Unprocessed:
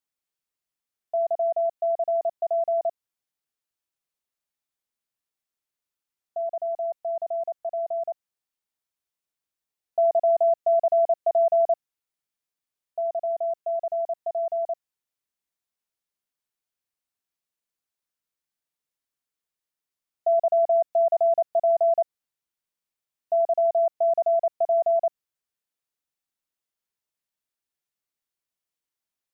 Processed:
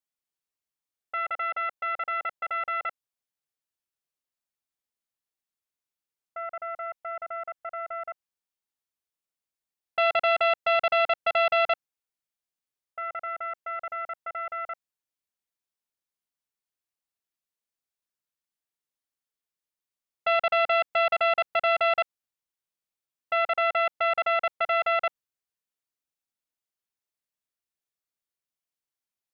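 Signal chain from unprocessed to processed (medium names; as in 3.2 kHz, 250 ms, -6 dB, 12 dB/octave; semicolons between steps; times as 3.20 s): self-modulated delay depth 0.79 ms; trim -4 dB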